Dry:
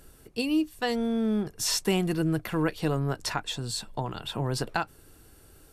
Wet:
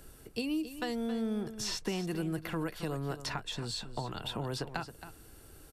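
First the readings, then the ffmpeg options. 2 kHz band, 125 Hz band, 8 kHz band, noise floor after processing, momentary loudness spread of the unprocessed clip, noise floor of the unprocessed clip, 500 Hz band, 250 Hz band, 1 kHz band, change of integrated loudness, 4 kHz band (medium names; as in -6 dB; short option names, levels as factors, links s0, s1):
-7.0 dB, -8.0 dB, -9.5 dB, -55 dBFS, 7 LU, -56 dBFS, -7.0 dB, -7.5 dB, -7.5 dB, -7.5 dB, -6.0 dB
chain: -filter_complex "[0:a]acrossover=split=240|5600[s0][s1][s2];[s0]acompressor=threshold=0.01:ratio=4[s3];[s1]acompressor=threshold=0.0158:ratio=4[s4];[s2]acompressor=threshold=0.00251:ratio=4[s5];[s3][s4][s5]amix=inputs=3:normalize=0,aecho=1:1:271:0.251"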